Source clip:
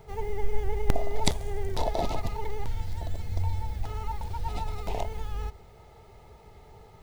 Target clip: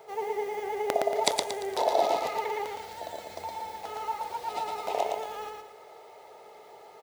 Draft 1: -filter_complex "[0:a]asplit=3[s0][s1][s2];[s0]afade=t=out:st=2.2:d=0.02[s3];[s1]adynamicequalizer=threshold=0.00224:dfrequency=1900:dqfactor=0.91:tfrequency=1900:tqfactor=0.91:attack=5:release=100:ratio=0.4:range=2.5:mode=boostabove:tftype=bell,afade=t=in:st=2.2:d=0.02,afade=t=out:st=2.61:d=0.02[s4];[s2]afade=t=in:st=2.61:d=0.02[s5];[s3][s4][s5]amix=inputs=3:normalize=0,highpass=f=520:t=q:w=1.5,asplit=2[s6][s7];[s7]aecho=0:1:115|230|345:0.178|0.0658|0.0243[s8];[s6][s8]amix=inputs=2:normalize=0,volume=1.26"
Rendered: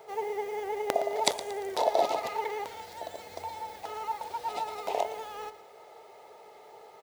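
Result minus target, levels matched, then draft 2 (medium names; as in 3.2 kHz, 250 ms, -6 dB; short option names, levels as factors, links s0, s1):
echo-to-direct -11.5 dB
-filter_complex "[0:a]asplit=3[s0][s1][s2];[s0]afade=t=out:st=2.2:d=0.02[s3];[s1]adynamicequalizer=threshold=0.00224:dfrequency=1900:dqfactor=0.91:tfrequency=1900:tqfactor=0.91:attack=5:release=100:ratio=0.4:range=2.5:mode=boostabove:tftype=bell,afade=t=in:st=2.2:d=0.02,afade=t=out:st=2.61:d=0.02[s4];[s2]afade=t=in:st=2.61:d=0.02[s5];[s3][s4][s5]amix=inputs=3:normalize=0,highpass=f=520:t=q:w=1.5,asplit=2[s6][s7];[s7]aecho=0:1:115|230|345|460|575:0.668|0.247|0.0915|0.0339|0.0125[s8];[s6][s8]amix=inputs=2:normalize=0,volume=1.26"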